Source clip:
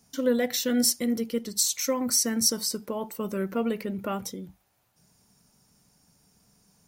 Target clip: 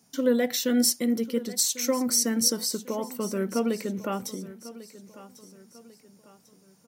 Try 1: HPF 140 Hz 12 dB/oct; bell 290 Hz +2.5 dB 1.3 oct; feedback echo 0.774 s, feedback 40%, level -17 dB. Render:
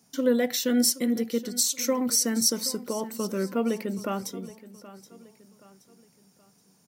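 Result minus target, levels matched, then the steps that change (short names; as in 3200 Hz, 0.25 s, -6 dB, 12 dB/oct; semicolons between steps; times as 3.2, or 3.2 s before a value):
echo 0.322 s early
change: feedback echo 1.096 s, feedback 40%, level -17 dB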